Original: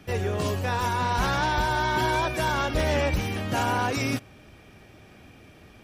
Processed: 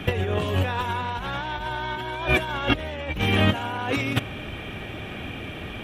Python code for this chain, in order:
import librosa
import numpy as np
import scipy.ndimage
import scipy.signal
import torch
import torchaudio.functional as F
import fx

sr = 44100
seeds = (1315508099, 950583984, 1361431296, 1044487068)

y = fx.high_shelf_res(x, sr, hz=4000.0, db=-6.5, q=3.0)
y = fx.over_compress(y, sr, threshold_db=-31.0, ratio=-0.5)
y = y * librosa.db_to_amplitude(7.5)